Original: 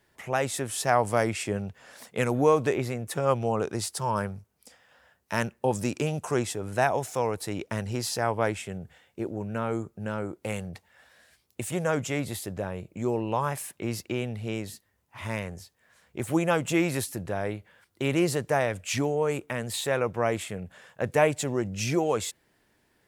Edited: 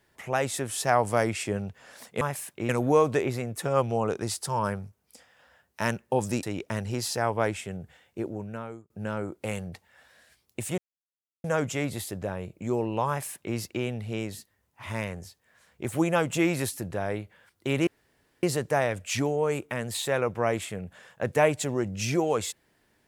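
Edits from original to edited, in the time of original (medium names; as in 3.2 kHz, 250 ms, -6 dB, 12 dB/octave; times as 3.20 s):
5.95–7.44 s: delete
9.25–9.91 s: fade out
11.79 s: insert silence 0.66 s
13.43–13.91 s: copy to 2.21 s
18.22 s: insert room tone 0.56 s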